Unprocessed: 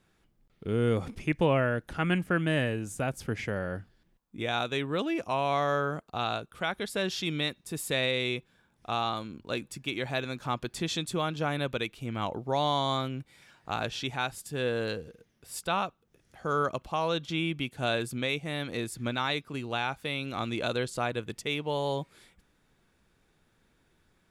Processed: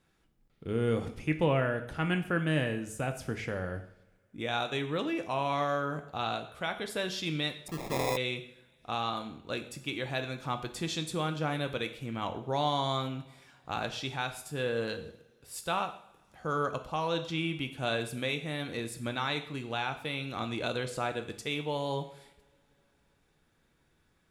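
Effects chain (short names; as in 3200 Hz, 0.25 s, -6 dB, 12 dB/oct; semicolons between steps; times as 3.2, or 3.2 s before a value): two-slope reverb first 0.61 s, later 3.2 s, from -27 dB, DRR 6.5 dB; 7.68–8.17 sample-rate reducer 1500 Hz, jitter 0%; gain -3 dB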